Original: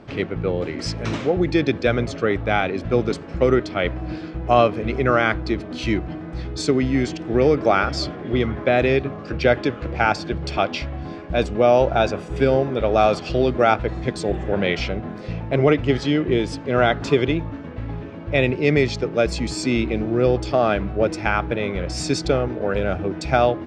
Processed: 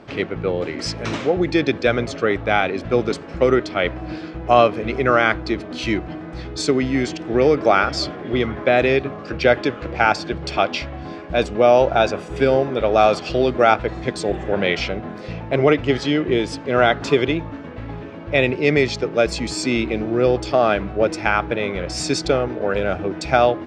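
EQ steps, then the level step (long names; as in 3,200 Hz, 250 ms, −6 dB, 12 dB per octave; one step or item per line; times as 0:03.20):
low-shelf EQ 220 Hz −7.5 dB
+3.0 dB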